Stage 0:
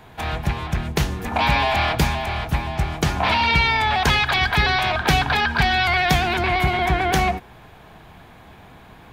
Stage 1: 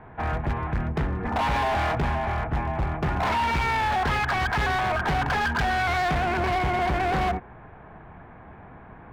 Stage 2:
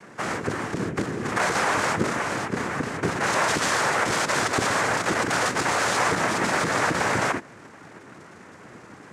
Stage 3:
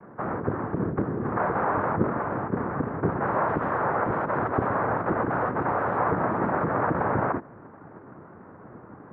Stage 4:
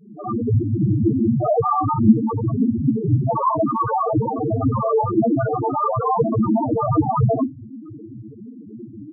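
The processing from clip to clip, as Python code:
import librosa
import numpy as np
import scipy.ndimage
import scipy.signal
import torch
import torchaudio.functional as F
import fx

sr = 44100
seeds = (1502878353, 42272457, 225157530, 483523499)

y1 = scipy.signal.sosfilt(scipy.signal.butter(4, 1900.0, 'lowpass', fs=sr, output='sos'), x)
y1 = np.clip(10.0 ** (21.5 / 20.0) * y1, -1.0, 1.0) / 10.0 ** (21.5 / 20.0)
y2 = fx.noise_vocoder(y1, sr, seeds[0], bands=3)
y2 = y2 * librosa.db_to_amplitude(1.5)
y3 = scipy.signal.sosfilt(scipy.signal.butter(4, 1300.0, 'lowpass', fs=sr, output='sos'), y2)
y3 = fx.low_shelf(y3, sr, hz=110.0, db=5.0)
y4 = fx.rev_gated(y3, sr, seeds[1], gate_ms=110, shape='rising', drr_db=-6.5)
y4 = fx.wow_flutter(y4, sr, seeds[2], rate_hz=2.1, depth_cents=28.0)
y4 = fx.spec_topn(y4, sr, count=2)
y4 = y4 * librosa.db_to_amplitude(8.5)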